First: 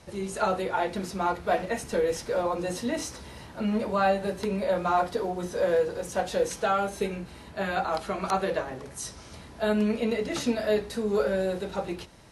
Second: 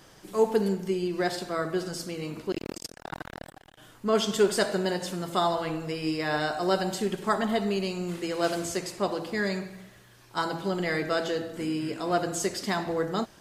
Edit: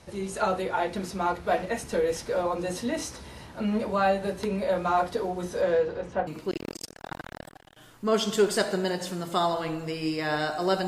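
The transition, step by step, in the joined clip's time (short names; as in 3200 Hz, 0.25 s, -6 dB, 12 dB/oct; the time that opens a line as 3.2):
first
5.61–6.27 LPF 7600 Hz -> 1600 Hz
6.27 switch to second from 2.28 s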